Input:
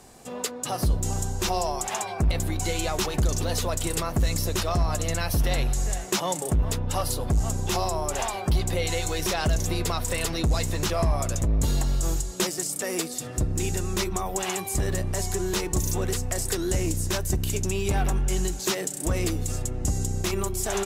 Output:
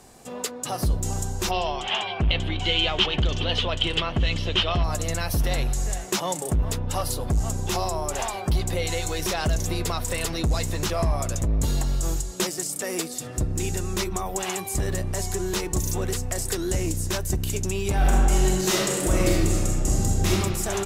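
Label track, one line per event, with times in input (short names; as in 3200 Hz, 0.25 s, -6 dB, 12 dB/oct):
1.510000	4.840000	synth low-pass 3100 Hz, resonance Q 9
17.960000	20.310000	reverb throw, RT60 1.8 s, DRR -4.5 dB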